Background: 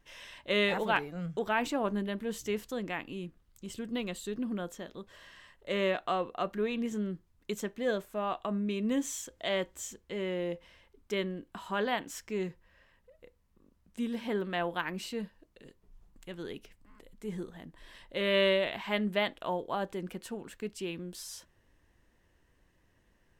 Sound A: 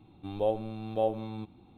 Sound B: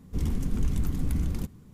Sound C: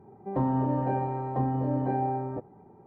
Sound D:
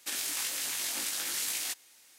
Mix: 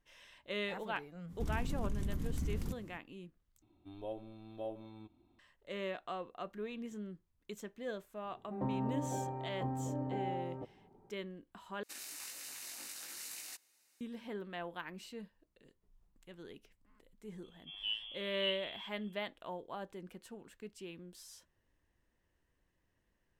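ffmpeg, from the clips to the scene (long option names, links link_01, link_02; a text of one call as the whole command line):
ffmpeg -i bed.wav -i cue0.wav -i cue1.wav -i cue2.wav -i cue3.wav -filter_complex "[1:a]asplit=2[link_01][link_02];[0:a]volume=-10.5dB[link_03];[2:a]acompressor=threshold=-29dB:ratio=6:attack=3.2:release=140:knee=1:detection=peak[link_04];[link_01]aecho=1:1:3.1:0.6[link_05];[4:a]bandreject=frequency=3300:width=7.3[link_06];[link_02]lowpass=frequency=3000:width_type=q:width=0.5098,lowpass=frequency=3000:width_type=q:width=0.6013,lowpass=frequency=3000:width_type=q:width=0.9,lowpass=frequency=3000:width_type=q:width=2.563,afreqshift=-3500[link_07];[link_03]asplit=3[link_08][link_09][link_10];[link_08]atrim=end=3.624[link_11];[link_05]atrim=end=1.77,asetpts=PTS-STARTPTS,volume=-14dB[link_12];[link_09]atrim=start=5.386:end=11.834[link_13];[link_06]atrim=end=2.18,asetpts=PTS-STARTPTS,volume=-13dB[link_14];[link_10]atrim=start=14.006[link_15];[link_04]atrim=end=1.73,asetpts=PTS-STARTPTS,volume=-3dB,afade=type=in:duration=0.05,afade=type=out:start_time=1.68:duration=0.05,adelay=1270[link_16];[3:a]atrim=end=2.86,asetpts=PTS-STARTPTS,volume=-10.5dB,afade=type=in:duration=0.004:curve=hsin,afade=type=out:start_time=2.856:duration=0.004:curve=hsin,adelay=8250[link_17];[link_07]atrim=end=1.77,asetpts=PTS-STARTPTS,volume=-11dB,afade=type=in:duration=0.004:curve=hsin,afade=type=out:start_time=1.766:duration=0.004:curve=hsin,adelay=17430[link_18];[link_11][link_12]acrossfade=duration=0.004:curve1=hsin:curve2=hsin[link_19];[link_19][link_13]acrossfade=duration=0.004:curve1=hsin:curve2=hsin[link_20];[link_20][link_14]acrossfade=duration=0.004:curve1=hsin:curve2=hsin[link_21];[link_21][link_15]acrossfade=duration=0.004:curve1=hsin:curve2=hsin[link_22];[link_22][link_16][link_17][link_18]amix=inputs=4:normalize=0" out.wav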